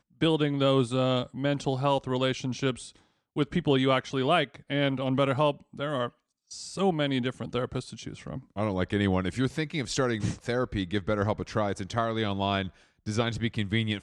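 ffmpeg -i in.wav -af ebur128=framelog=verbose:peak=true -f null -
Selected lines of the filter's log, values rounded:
Integrated loudness:
  I:         -28.4 LUFS
  Threshold: -38.7 LUFS
Loudness range:
  LRA:         2.9 LU
  Threshold: -49.0 LUFS
  LRA low:   -30.4 LUFS
  LRA high:  -27.5 LUFS
True peak:
  Peak:      -11.6 dBFS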